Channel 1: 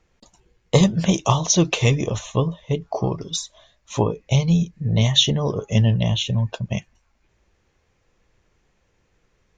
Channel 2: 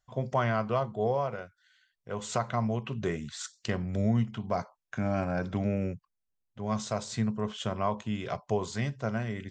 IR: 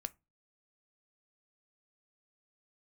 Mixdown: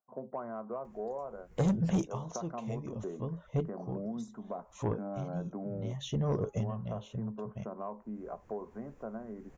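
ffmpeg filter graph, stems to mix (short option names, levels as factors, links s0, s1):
-filter_complex "[0:a]acompressor=mode=upward:threshold=0.0708:ratio=2.5,adelay=850,volume=0.531[s0];[1:a]highpass=f=210:w=0.5412,highpass=f=210:w=1.3066,acompressor=threshold=0.02:ratio=2,lowpass=f=1300:w=0.5412,lowpass=f=1300:w=1.3066,volume=0.708,asplit=2[s1][s2];[s2]apad=whole_len=459852[s3];[s0][s3]sidechaincompress=threshold=0.00178:ratio=4:attack=27:release=309[s4];[s4][s1]amix=inputs=2:normalize=0,equalizer=f=3900:t=o:w=2:g=-14.5,asoftclip=type=tanh:threshold=0.075"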